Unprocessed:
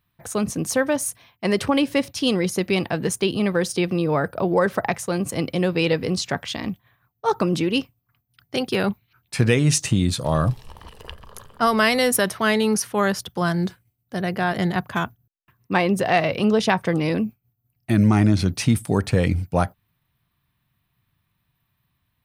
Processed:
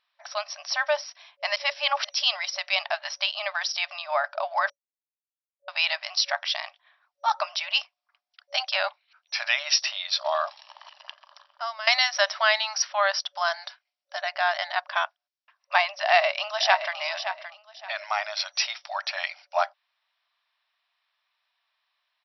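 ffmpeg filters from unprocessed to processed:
-filter_complex "[0:a]asettb=1/sr,asplit=3[s0][s1][s2];[s0]atrim=end=7.674[s3];[s1]atrim=start=7.67:end=8.77,asetpts=PTS-STARTPTS,afade=t=in:d=0.004:c=qsin,afade=t=out:st=1.096:d=0.004:c=qsin,equalizer=f=460:w=0.77:g=4.5[s4];[s2]atrim=start=8.766[s5];[s3][s4]acrossfade=d=0.004:c1=hsin:c2=qsin[s6];[s6][s5]acrossfade=d=0.004:c1=qsin:c2=hsin,asplit=2[s7][s8];[s8]afade=t=in:st=15.89:d=0.01,afade=t=out:st=16.97:d=0.01,aecho=0:1:570|1140|1710:0.316228|0.0790569|0.0197642[s9];[s7][s9]amix=inputs=2:normalize=0,asplit=6[s10][s11][s12][s13][s14][s15];[s10]atrim=end=1.562[s16];[s11]atrim=start=1.558:end=2.092,asetpts=PTS-STARTPTS,areverse[s17];[s12]atrim=start=2.088:end=4.7,asetpts=PTS-STARTPTS,afade=t=out:st=2.608:d=0.004:c=hsin[s18];[s13]atrim=start=4.7:end=5.68,asetpts=PTS-STARTPTS,volume=0[s19];[s14]atrim=start=5.68:end=11.87,asetpts=PTS-STARTPTS,afade=t=in:d=0.004:c=hsin,afade=t=out:st=4.81:d=1.38:silence=0.11885[s20];[s15]atrim=start=11.87,asetpts=PTS-STARTPTS,afade=t=in:d=0.004:c=hsin:silence=0.11885[s21];[s16][s17]acrossfade=d=0.004:c1=hsin:c2=hsin[s22];[s18][s19][s20][s21]concat=n=4:v=0:a=1[s23];[s22][s23]acrossfade=d=0.004:c1=hsin:c2=hsin,aemphasis=mode=production:type=bsi,afftfilt=real='re*between(b*sr/4096,560,5800)':imag='im*between(b*sr/4096,560,5800)':win_size=4096:overlap=0.75"

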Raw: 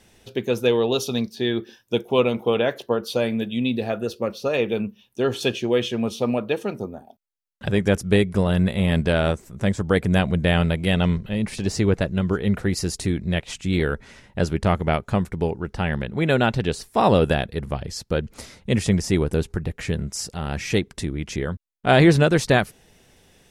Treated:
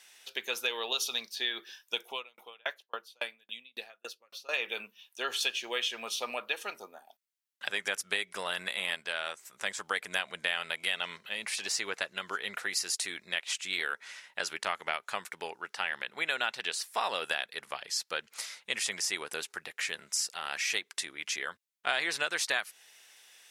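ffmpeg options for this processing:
-filter_complex "[0:a]asettb=1/sr,asplit=3[s0][s1][s2];[s0]atrim=end=2.104[s3];[s1]atrim=start=2.1:end=4.49,asetpts=PTS-STARTPTS,afade=t=in:d=0.004:c=qsin,afade=t=out:st=2.386:d=0.004:c=qsin,aeval=exprs='val(0)*pow(10,-40*if(lt(mod(3.6*n/s,1),2*abs(3.6)/1000),1-mod(3.6*n/s,1)/(2*abs(3.6)/1000),(mod(3.6*n/s,1)-2*abs(3.6)/1000)/(1-2*abs(3.6)/1000))/20)':c=same[s4];[s2]atrim=start=4.486[s5];[s3][s4]acrossfade=d=0.004:c1=hsin:c2=qsin[s6];[s6][s5]acrossfade=d=0.004:c1=qsin:c2=hsin,asplit=3[s7][s8][s9];[s7]atrim=end=8.952[s10];[s8]atrim=start=8.948:end=9.452,asetpts=PTS-STARTPTS,volume=0.501[s11];[s9]atrim=start=9.448[s12];[s10][s11]acrossfade=d=0.004:c1=hsin:c2=hsin[s13];[s13][s12]acrossfade=d=0.004:c1=hsin:c2=hsin,highpass=1400,acompressor=threshold=0.0282:ratio=3,volume=1.33"

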